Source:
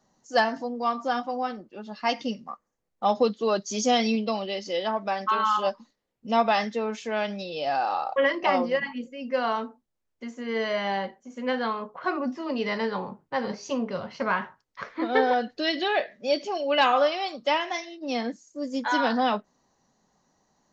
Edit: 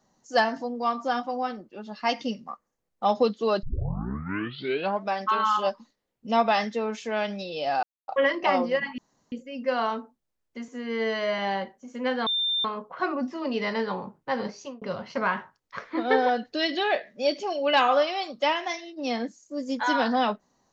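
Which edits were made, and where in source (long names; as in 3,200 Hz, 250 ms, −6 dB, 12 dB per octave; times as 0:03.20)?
0:03.63: tape start 1.41 s
0:07.83–0:08.08: silence
0:08.98: splice in room tone 0.34 s
0:10.34–0:10.81: time-stretch 1.5×
0:11.69: insert tone 3,590 Hz −23 dBFS 0.38 s
0:13.49–0:13.86: fade out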